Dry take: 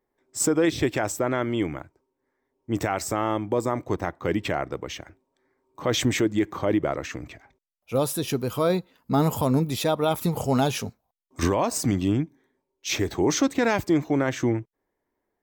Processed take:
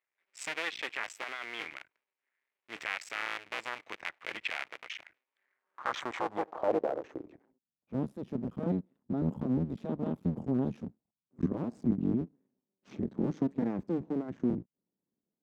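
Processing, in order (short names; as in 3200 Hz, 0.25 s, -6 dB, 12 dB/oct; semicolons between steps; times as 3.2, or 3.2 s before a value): cycle switcher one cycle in 2, muted; band-pass sweep 2300 Hz -> 210 Hz, 5.32–7.77; gain +2 dB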